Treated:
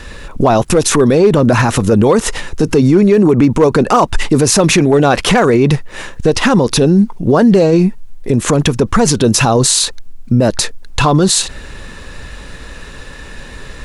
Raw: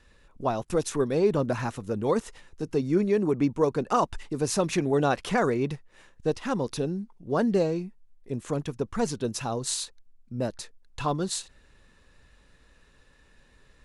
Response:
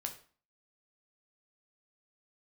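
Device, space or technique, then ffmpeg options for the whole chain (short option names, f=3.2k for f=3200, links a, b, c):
loud club master: -af "acompressor=threshold=-29dB:ratio=1.5,asoftclip=type=hard:threshold=-19.5dB,alimiter=level_in=29.5dB:limit=-1dB:release=50:level=0:latency=1,volume=-1.5dB"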